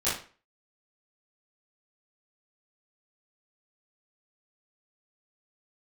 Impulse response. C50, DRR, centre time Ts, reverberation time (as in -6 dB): 3.0 dB, -12.5 dB, 43 ms, 0.40 s